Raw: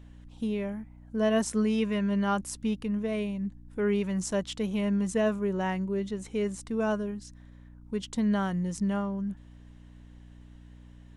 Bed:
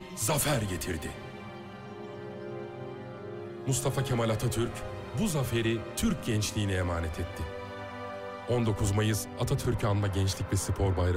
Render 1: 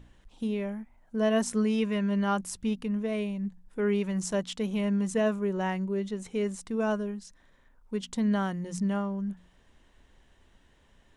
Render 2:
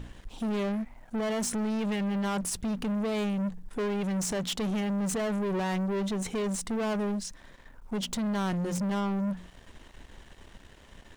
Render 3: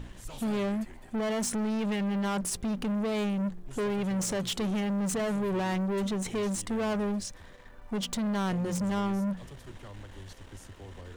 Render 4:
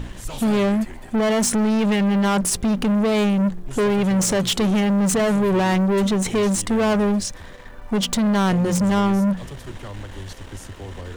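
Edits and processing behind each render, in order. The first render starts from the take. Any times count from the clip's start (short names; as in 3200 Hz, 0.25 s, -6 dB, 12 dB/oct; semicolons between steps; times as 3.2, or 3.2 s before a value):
de-hum 60 Hz, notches 5
limiter -26.5 dBFS, peak gain reduction 10.5 dB; sample leveller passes 3
add bed -19 dB
gain +11 dB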